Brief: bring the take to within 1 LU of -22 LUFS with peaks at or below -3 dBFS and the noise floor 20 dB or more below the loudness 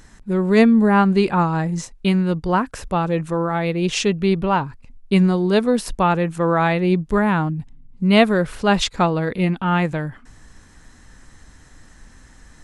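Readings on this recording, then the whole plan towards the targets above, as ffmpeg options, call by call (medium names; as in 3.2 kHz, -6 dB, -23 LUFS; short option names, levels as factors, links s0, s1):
loudness -19.0 LUFS; peak level -1.5 dBFS; loudness target -22.0 LUFS
-> -af "volume=0.708"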